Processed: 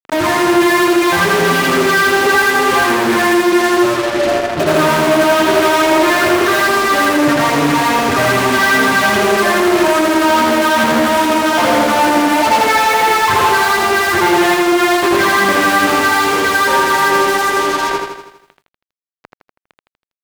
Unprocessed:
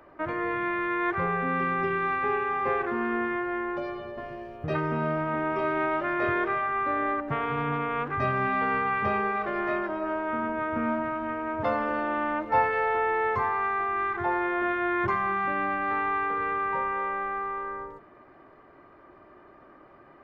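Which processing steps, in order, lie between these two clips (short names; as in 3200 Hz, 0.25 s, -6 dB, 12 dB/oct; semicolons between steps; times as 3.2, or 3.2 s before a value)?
notch 1200 Hz, Q 21; comb 3.2 ms, depth 44%; frequency-shifting echo 0.328 s, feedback 36%, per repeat -30 Hz, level -21.5 dB; grains 0.1 s, grains 20/s, pitch spread up and down by 0 st; phaser stages 12, 2.4 Hz, lowest notch 380–2800 Hz; fuzz box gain 48 dB, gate -44 dBFS; HPF 230 Hz 6 dB/oct; high shelf 2200 Hz -2 dB; lo-fi delay 81 ms, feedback 55%, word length 10-bit, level -4 dB; gain +2 dB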